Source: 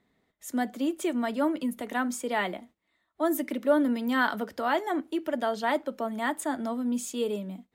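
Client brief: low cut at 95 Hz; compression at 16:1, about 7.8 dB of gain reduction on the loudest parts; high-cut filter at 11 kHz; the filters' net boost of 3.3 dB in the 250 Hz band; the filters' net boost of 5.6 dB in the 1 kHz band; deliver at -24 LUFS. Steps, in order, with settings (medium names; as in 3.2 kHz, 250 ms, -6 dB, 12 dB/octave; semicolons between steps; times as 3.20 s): high-pass 95 Hz; low-pass 11 kHz; peaking EQ 250 Hz +3.5 dB; peaking EQ 1 kHz +7 dB; compression 16:1, threshold -23 dBFS; trim +5.5 dB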